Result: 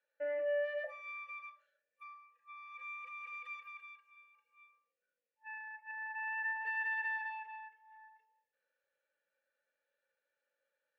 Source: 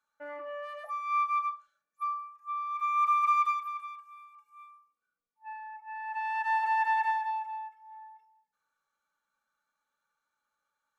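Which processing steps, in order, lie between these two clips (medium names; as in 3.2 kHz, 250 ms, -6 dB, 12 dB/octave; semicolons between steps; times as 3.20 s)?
5.91–6.65 s: spectral contrast enhancement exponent 1.6; peak limiter -29 dBFS, peak gain reduction 11 dB; vowel filter e; trim +12.5 dB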